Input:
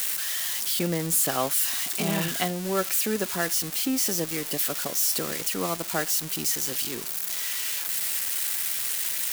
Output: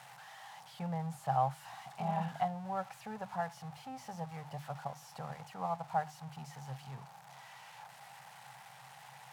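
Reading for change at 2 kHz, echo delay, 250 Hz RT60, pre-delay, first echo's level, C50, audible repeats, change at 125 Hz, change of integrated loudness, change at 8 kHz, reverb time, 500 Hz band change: -17.0 dB, none, none, none, none, none, none, -6.0 dB, -15.0 dB, -32.5 dB, none, -12.0 dB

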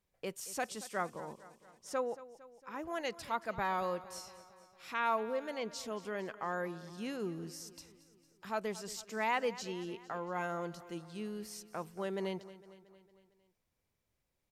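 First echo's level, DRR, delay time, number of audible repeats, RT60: -17.0 dB, none, 0.228 s, 4, none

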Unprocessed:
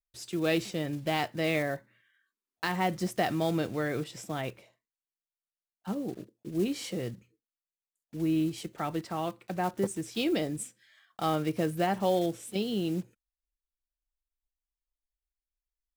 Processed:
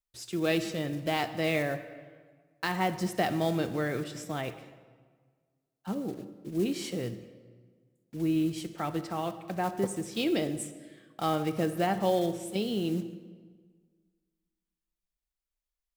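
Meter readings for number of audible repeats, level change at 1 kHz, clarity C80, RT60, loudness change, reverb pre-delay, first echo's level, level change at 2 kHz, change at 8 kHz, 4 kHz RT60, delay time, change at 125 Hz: none, +0.5 dB, 13.5 dB, 1.6 s, +0.5 dB, 36 ms, none, 0.0 dB, 0.0 dB, 1.1 s, none, +0.5 dB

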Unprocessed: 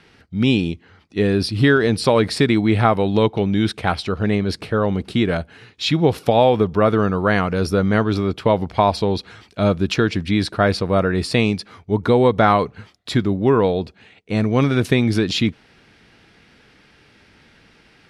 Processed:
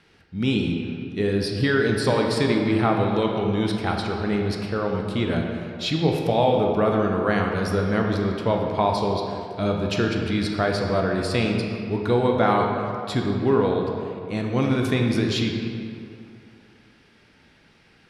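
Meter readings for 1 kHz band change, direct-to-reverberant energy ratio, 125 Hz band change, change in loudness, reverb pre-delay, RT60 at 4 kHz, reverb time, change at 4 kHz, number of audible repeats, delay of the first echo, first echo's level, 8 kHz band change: -4.0 dB, 1.0 dB, -4.5 dB, -4.5 dB, 18 ms, 1.5 s, 2.6 s, -4.5 dB, none, none, none, -4.5 dB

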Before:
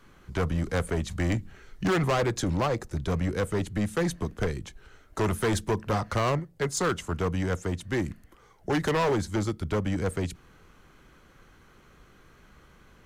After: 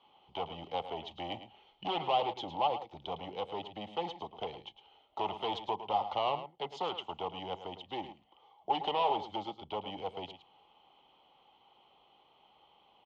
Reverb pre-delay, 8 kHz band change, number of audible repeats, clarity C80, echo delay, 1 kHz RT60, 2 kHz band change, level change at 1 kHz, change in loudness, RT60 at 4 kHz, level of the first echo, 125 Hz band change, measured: none, under -30 dB, 1, none, 0.108 s, none, -14.5 dB, 0.0 dB, -8.0 dB, none, -11.5 dB, -23.5 dB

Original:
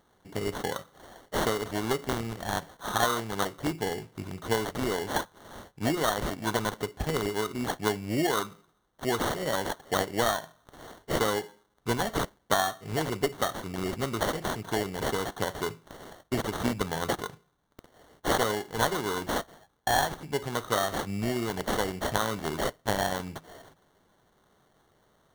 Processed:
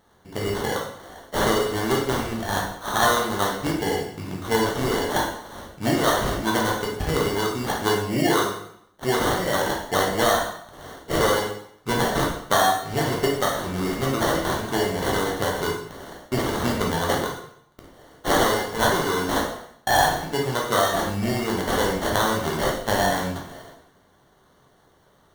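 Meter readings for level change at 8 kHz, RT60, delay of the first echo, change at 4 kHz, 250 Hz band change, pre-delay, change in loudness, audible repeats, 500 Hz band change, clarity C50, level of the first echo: +6.5 dB, 0.70 s, none, +7.0 dB, +6.5 dB, 5 ms, +7.0 dB, none, +7.0 dB, 4.0 dB, none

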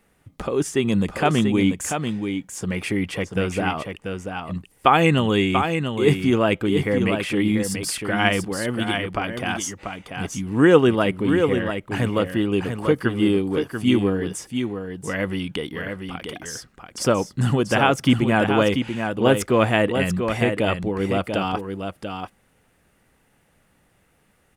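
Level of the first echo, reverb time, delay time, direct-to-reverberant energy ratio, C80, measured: -6.5 dB, none, 0.688 s, none, none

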